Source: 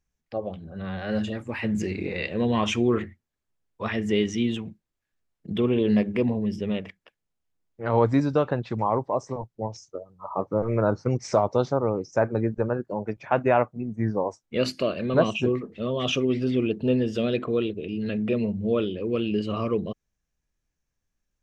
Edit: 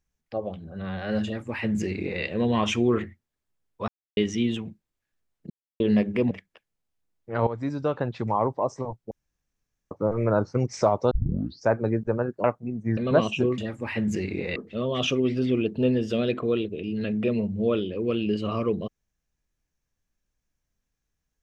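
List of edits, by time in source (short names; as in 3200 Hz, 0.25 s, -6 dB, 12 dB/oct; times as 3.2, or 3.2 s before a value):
1.25–2.23 copy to 15.61
3.88–4.17 mute
5.5–5.8 mute
6.31–6.82 cut
7.98–8.69 fade in, from -15 dB
9.62–10.42 room tone
11.62 tape start 0.56 s
12.95–13.57 cut
14.1–15 cut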